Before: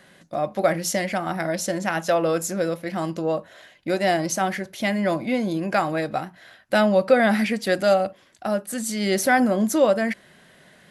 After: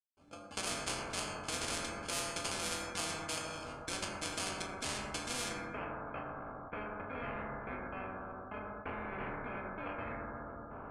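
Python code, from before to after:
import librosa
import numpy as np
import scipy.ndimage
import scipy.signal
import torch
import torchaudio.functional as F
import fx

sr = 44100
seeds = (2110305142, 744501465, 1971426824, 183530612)

y = fx.spec_ripple(x, sr, per_octave=1.7, drift_hz=-0.82, depth_db=10)
y = fx.recorder_agc(y, sr, target_db=-10.0, rise_db_per_s=8.9, max_gain_db=30)
y = y + 10.0 ** (-22.0 / 20.0) * np.pad(y, (int(249 * sr / 1000.0), 0))[:len(y)]
y = fx.level_steps(y, sr, step_db=23)
y = fx.step_gate(y, sr, bpm=178, pattern='..xx..xxxxx', floor_db=-60.0, edge_ms=4.5)
y = fx.comb_fb(y, sr, f0_hz=97.0, decay_s=0.31, harmonics='odd', damping=0.0, mix_pct=90)
y = fx.sample_hold(y, sr, seeds[0], rate_hz=1900.0, jitter_pct=0)
y = fx.steep_lowpass(y, sr, hz=fx.steps((0.0, 9600.0), (5.48, 1800.0)), slope=36)
y = fx.rev_fdn(y, sr, rt60_s=1.5, lf_ratio=1.0, hf_ratio=0.3, size_ms=69.0, drr_db=-2.5)
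y = fx.spectral_comp(y, sr, ratio=4.0)
y = F.gain(torch.from_numpy(y), 1.0).numpy()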